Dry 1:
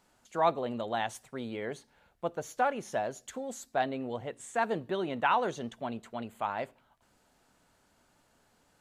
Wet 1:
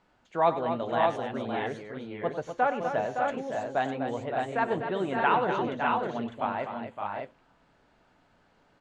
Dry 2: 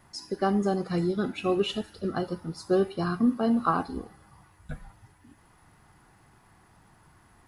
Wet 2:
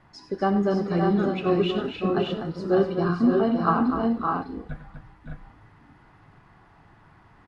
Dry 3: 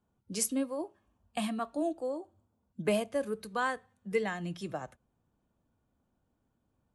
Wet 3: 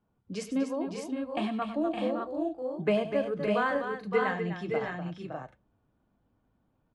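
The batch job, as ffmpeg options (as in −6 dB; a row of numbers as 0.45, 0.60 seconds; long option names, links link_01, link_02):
-af "lowpass=3200,flanger=delay=6.2:depth=1:regen=-73:speed=2:shape=sinusoidal,aecho=1:1:98|248|564|603:0.237|0.376|0.447|0.596,volume=6.5dB"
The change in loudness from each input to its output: +4.0, +4.0, +3.5 LU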